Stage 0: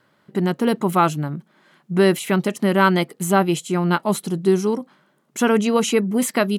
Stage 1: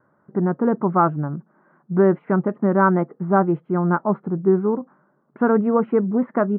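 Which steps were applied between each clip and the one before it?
steep low-pass 1500 Hz 36 dB/oct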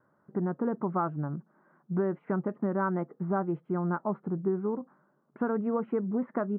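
compressor 3:1, threshold -20 dBFS, peak gain reduction 7.5 dB; gain -6.5 dB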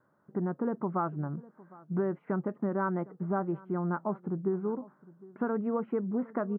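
outdoor echo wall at 130 m, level -21 dB; gain -1.5 dB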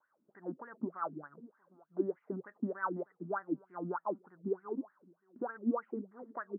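wah 3.3 Hz 240–1900 Hz, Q 8.3; gain +5.5 dB

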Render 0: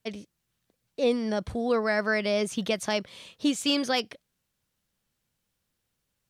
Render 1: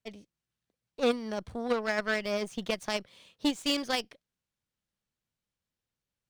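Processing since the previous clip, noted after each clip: median filter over 3 samples; added harmonics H 3 -13 dB, 6 -30 dB, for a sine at -15 dBFS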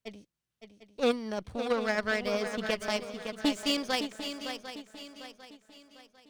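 swung echo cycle 0.749 s, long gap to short 3:1, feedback 37%, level -8.5 dB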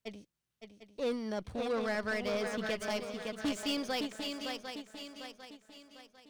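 soft clip -27.5 dBFS, distortion -8 dB

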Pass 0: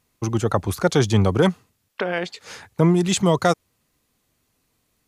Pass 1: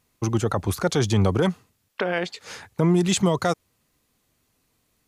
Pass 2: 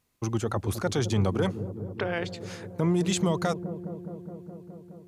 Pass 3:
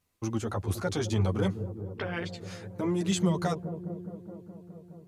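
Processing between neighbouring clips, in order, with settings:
limiter -11.5 dBFS, peak gain reduction 6 dB
dark delay 0.209 s, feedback 79%, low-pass 470 Hz, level -9 dB; gain -5.5 dB
chorus voices 2, 0.69 Hz, delay 11 ms, depth 1.8 ms

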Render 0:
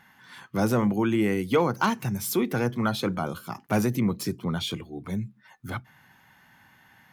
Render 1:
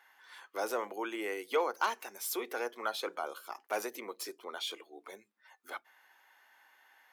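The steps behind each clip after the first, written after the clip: inverse Chebyshev high-pass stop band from 160 Hz, stop band 50 dB; gain -6 dB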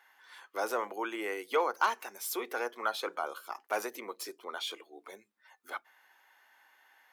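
dynamic EQ 1200 Hz, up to +4 dB, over -47 dBFS, Q 1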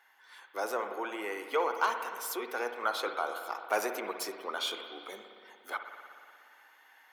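vocal rider 2 s; spring tank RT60 2.2 s, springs 58 ms, chirp 70 ms, DRR 6 dB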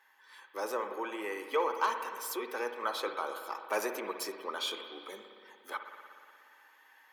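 notch comb 710 Hz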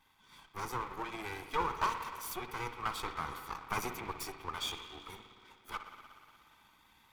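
minimum comb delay 0.87 ms; gain -1.5 dB

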